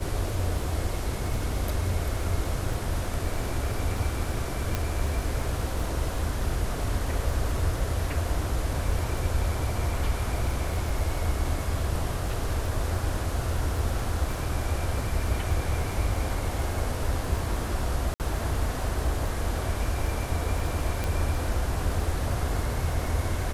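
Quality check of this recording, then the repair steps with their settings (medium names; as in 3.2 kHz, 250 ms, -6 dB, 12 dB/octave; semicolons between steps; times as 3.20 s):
crackle 38 per s -34 dBFS
4.75 s: pop -12 dBFS
18.14–18.20 s: dropout 58 ms
21.04 s: pop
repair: de-click; interpolate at 18.14 s, 58 ms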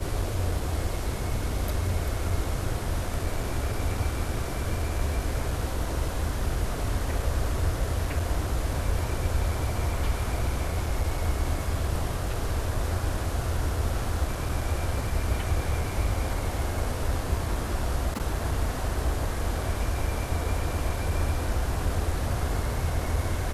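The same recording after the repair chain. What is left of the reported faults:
21.04 s: pop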